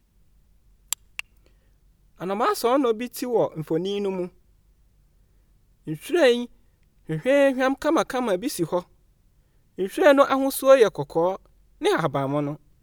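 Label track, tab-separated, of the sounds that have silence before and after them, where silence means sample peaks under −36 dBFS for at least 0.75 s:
0.930000	1.200000	sound
2.210000	4.280000	sound
5.870000	8.820000	sound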